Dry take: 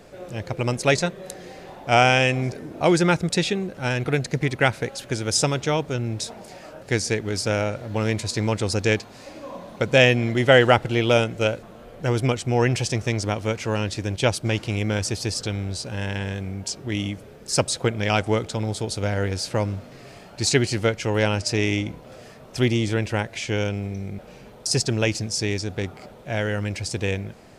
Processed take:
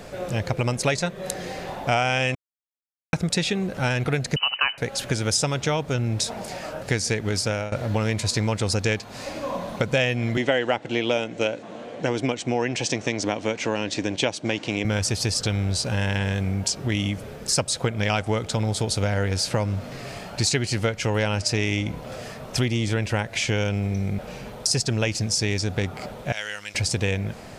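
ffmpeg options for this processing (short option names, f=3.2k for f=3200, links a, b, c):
-filter_complex "[0:a]asettb=1/sr,asplit=3[a][b][c];[a]atrim=end=4.364[d];[b]atrim=start=4.36:end=4.78,asetpts=PTS-STARTPTS,afade=t=in:d=0.004:c=qsin,afade=t=out:st=0.416:d=0.004:c=qsin,lowpass=f=2.6k:t=q:w=0.5098,lowpass=f=2.6k:t=q:w=0.6013,lowpass=f=2.6k:t=q:w=0.9,lowpass=f=2.6k:t=q:w=2.563,afreqshift=-3100[e];[c]atrim=start=4.776[f];[d][e]acrossfade=d=0.004:c1=hsin:c2=qsin[g];[g][f]acrossfade=d=0.004:c1=qsin:c2=hsin,asettb=1/sr,asplit=3[h][i][j];[h]atrim=end=10.374[k];[i]atrim=start=10.37:end=14.85,asetpts=PTS-STARTPTS,afade=t=in:d=0.004:c=qsin,afade=t=out:st=4.476:d=0.004:c=qsin,highpass=220,equalizer=f=290:t=q:w=4:g=7,equalizer=f=1.3k:t=q:w=4:g=-6,equalizer=f=4.9k:t=q:w=4:g=-4,lowpass=f=7.4k:w=0.5412,lowpass=f=7.4k:w=1.3066[l];[j]atrim=start=14.846[m];[k][l]acrossfade=d=0.004:c1=hsin:c2=qsin[n];[n][m]acrossfade=d=0.004:c1=qsin:c2=hsin,asettb=1/sr,asplit=3[o][p][q];[o]atrim=end=26.324[r];[p]atrim=start=26.32:end=26.75,asetpts=PTS-STARTPTS,afade=t=in:d=0.004:c=qsin,afade=t=out:st=0.426:d=0.004:c=qsin,bandpass=f=6.2k:t=q:w=0.77[s];[q]atrim=start=26.746[t];[r][s]acrossfade=d=0.004:c1=hsin:c2=qsin[u];[u][t]acrossfade=d=0.004:c1=qsin:c2=hsin,asplit=4[v][w][x][y];[v]atrim=end=2.35,asetpts=PTS-STARTPTS,afade=t=out:st=2.346:d=0.004:c=hsin[z];[w]atrim=start=2.35:end=3.13,asetpts=PTS-STARTPTS,volume=0[aa];[x]atrim=start=3.13:end=7.72,asetpts=PTS-STARTPTS,afade=t=in:d=0.004:c=hsin,afade=t=out:st=4.15:d=0.44:silence=0.105925[ab];[y]atrim=start=7.72,asetpts=PTS-STARTPTS,afade=t=in:d=0.004:c=hsin:silence=0.105925[ac];[z][aa][ab][ac]concat=n=4:v=0:a=1,equalizer=f=350:w=1.9:g=-4.5,acompressor=threshold=-30dB:ratio=4,volume=8.5dB"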